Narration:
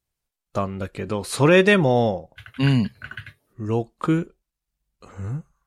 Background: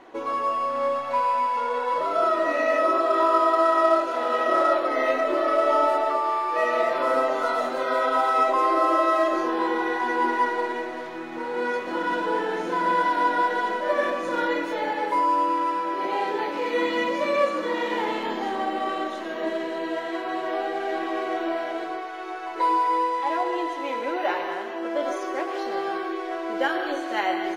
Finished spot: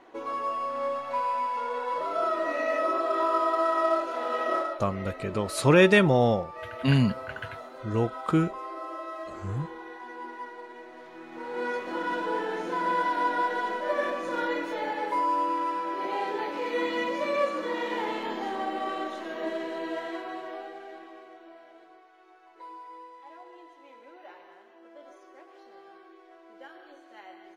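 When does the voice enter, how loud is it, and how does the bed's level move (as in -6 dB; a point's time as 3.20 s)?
4.25 s, -3.0 dB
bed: 4.55 s -5.5 dB
4.79 s -17 dB
10.67 s -17 dB
11.63 s -4.5 dB
20.05 s -4.5 dB
21.39 s -23 dB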